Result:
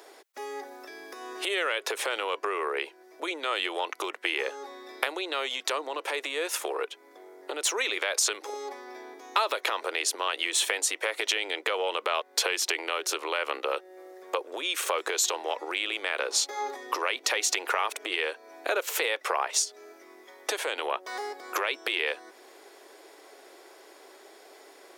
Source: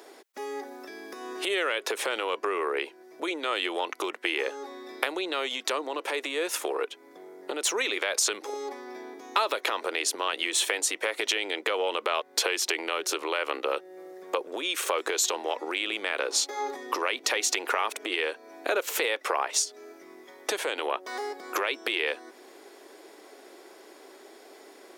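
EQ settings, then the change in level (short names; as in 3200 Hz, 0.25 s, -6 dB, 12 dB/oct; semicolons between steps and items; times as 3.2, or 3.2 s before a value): HPF 400 Hz 12 dB/oct; 0.0 dB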